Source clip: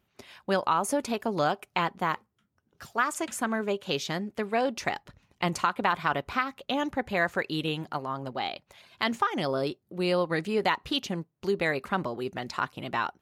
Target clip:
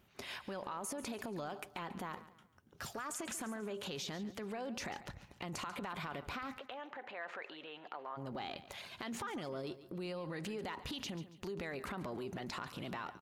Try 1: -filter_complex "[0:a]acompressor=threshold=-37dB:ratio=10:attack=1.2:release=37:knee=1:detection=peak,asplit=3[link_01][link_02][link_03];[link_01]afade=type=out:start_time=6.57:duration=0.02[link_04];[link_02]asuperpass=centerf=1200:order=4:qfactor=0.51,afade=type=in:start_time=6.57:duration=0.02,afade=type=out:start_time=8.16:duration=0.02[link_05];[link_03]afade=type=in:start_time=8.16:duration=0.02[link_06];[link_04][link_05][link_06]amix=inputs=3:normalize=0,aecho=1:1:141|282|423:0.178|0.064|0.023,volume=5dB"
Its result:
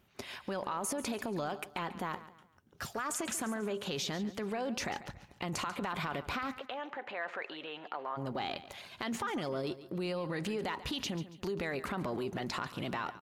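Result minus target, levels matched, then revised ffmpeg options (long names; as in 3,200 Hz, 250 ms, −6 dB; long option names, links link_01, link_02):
downward compressor: peak gain reduction −6.5 dB
-filter_complex "[0:a]acompressor=threshold=-44dB:ratio=10:attack=1.2:release=37:knee=1:detection=peak,asplit=3[link_01][link_02][link_03];[link_01]afade=type=out:start_time=6.57:duration=0.02[link_04];[link_02]asuperpass=centerf=1200:order=4:qfactor=0.51,afade=type=in:start_time=6.57:duration=0.02,afade=type=out:start_time=8.16:duration=0.02[link_05];[link_03]afade=type=in:start_time=8.16:duration=0.02[link_06];[link_04][link_05][link_06]amix=inputs=3:normalize=0,aecho=1:1:141|282|423:0.178|0.064|0.023,volume=5dB"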